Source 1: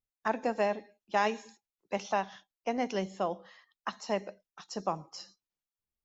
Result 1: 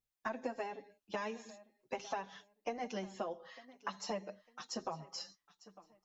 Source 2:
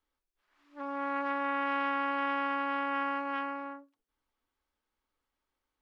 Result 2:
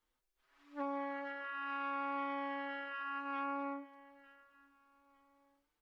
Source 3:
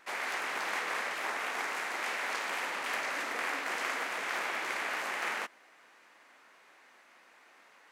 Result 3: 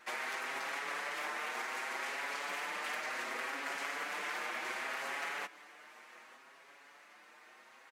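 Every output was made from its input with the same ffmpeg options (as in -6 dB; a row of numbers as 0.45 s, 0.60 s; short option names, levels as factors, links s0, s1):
-filter_complex "[0:a]acompressor=threshold=0.0141:ratio=6,asplit=2[s0][s1];[s1]aecho=0:1:902|1804:0.112|0.0281[s2];[s0][s2]amix=inputs=2:normalize=0,asplit=2[s3][s4];[s4]adelay=6.1,afreqshift=0.67[s5];[s3][s5]amix=inputs=2:normalize=1,volume=1.58"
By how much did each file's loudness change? -9.0 LU, -8.0 LU, -4.5 LU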